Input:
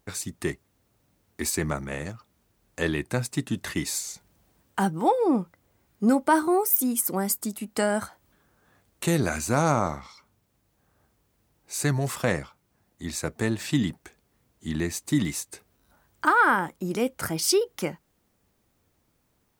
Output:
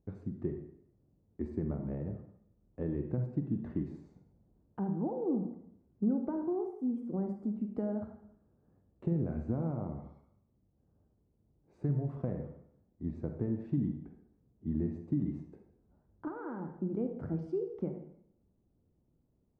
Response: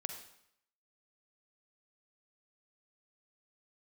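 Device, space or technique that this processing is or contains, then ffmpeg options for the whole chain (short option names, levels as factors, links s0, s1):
television next door: -filter_complex "[0:a]acompressor=threshold=0.0501:ratio=4,lowpass=390[s0];[1:a]atrim=start_sample=2205[s1];[s0][s1]afir=irnorm=-1:irlink=0"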